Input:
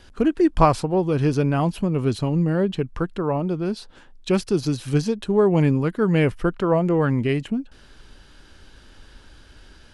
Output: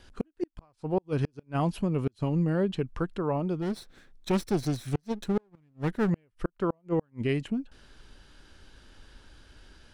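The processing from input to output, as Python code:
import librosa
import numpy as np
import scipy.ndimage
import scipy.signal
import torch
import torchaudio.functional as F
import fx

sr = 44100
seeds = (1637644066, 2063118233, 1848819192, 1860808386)

y = fx.lower_of_two(x, sr, delay_ms=0.52, at=(3.61, 6.09), fade=0.02)
y = fx.gate_flip(y, sr, shuts_db=-11.0, range_db=-41)
y = y * librosa.db_to_amplitude(-5.5)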